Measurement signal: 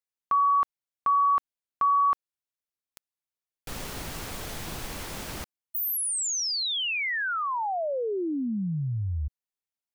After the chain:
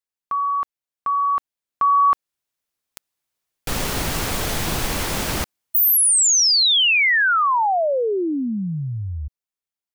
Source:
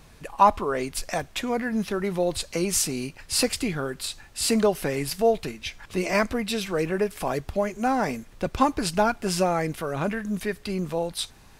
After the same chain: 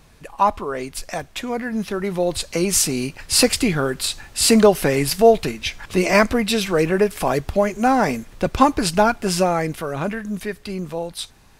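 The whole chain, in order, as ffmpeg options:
-af "dynaudnorm=f=270:g=17:m=4.47"

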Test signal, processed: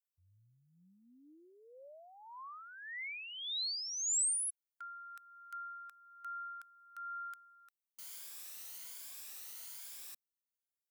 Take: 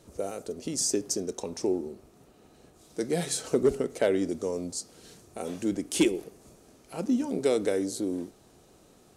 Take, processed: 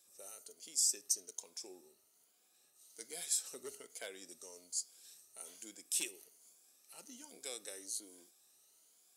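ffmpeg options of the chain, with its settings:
-af "afftfilt=real='re*pow(10,8/40*sin(2*PI*(1.8*log(max(b,1)*sr/1024/100)/log(2)-(1.2)*(pts-256)/sr)))':imag='im*pow(10,8/40*sin(2*PI*(1.8*log(max(b,1)*sr/1024/100)/log(2)-(1.2)*(pts-256)/sr)))':win_size=1024:overlap=0.75,aderivative,volume=0.668"

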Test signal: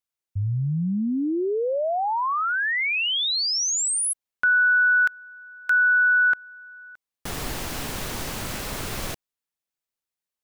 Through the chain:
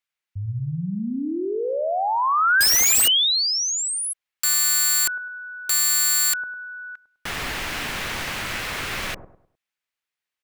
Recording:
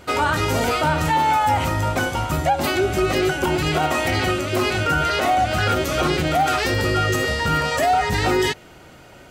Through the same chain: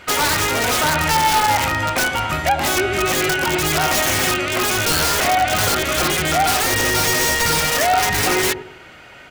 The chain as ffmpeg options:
-filter_complex "[0:a]equalizer=f=2100:w=0.58:g=13.5,acrossover=split=920[s0][s1];[s0]aecho=1:1:102|204|306|408:0.501|0.16|0.0513|0.0164[s2];[s1]aeval=exprs='(mod(3.16*val(0)+1,2)-1)/3.16':c=same[s3];[s2][s3]amix=inputs=2:normalize=0,volume=0.631"

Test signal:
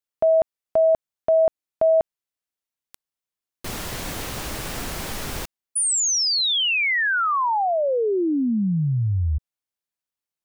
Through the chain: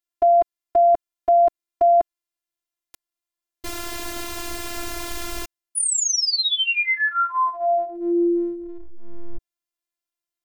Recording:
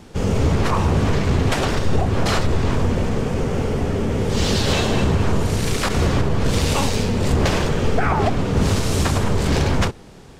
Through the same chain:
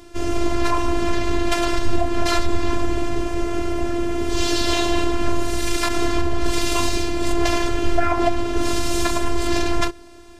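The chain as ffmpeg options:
-af "afftfilt=real='hypot(re,im)*cos(PI*b)':imag='0':win_size=512:overlap=0.75,volume=1.5"

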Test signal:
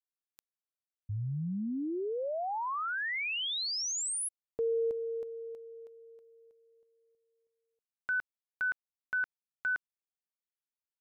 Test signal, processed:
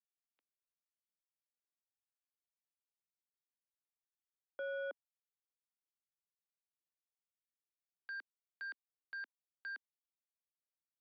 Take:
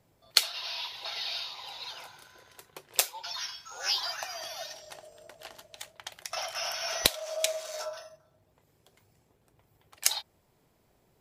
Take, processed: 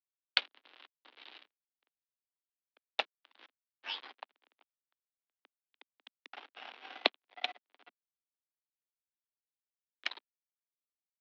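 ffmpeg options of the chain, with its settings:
-af "aeval=exprs='sgn(val(0))*max(abs(val(0))-0.0299,0)':c=same,highpass=f=160:t=q:w=0.5412,highpass=f=160:t=q:w=1.307,lowpass=f=3500:t=q:w=0.5176,lowpass=f=3500:t=q:w=0.7071,lowpass=f=3500:t=q:w=1.932,afreqshift=94,volume=1.12"

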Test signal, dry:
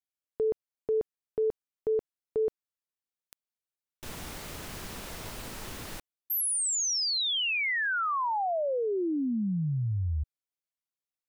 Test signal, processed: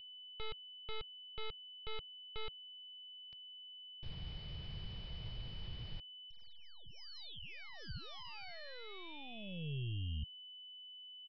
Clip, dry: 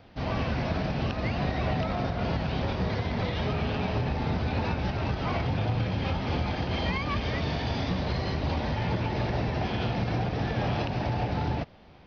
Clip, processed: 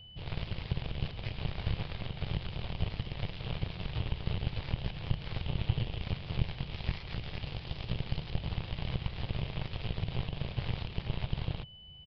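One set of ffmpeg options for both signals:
-af "aeval=exprs='val(0)+0.0126*sin(2*PI*3000*n/s)':c=same,aeval=exprs='0.2*(cos(1*acos(clip(val(0)/0.2,-1,1)))-cos(1*PI/2))+0.0891*(cos(2*acos(clip(val(0)/0.2,-1,1)))-cos(2*PI/2))+0.02*(cos(6*acos(clip(val(0)/0.2,-1,1)))-cos(6*PI/2))+0.0562*(cos(7*acos(clip(val(0)/0.2,-1,1)))-cos(7*PI/2))+0.0178*(cos(8*acos(clip(val(0)/0.2,-1,1)))-cos(8*PI/2))':c=same,firequalizer=gain_entry='entry(140,0);entry(250,-18);entry(430,-15);entry(1400,-21);entry(2300,-14)':delay=0.05:min_phase=1,aresample=11025,aresample=44100,volume=1.26"

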